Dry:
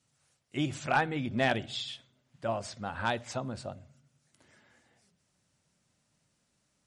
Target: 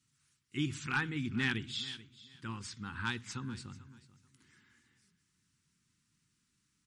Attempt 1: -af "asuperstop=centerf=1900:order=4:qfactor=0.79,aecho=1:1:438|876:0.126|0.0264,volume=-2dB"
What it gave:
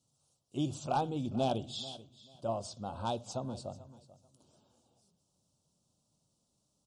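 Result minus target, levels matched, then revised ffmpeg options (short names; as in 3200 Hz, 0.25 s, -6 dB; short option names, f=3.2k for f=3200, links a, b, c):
2000 Hz band -18.5 dB
-af "asuperstop=centerf=630:order=4:qfactor=0.79,aecho=1:1:438|876:0.126|0.0264,volume=-2dB"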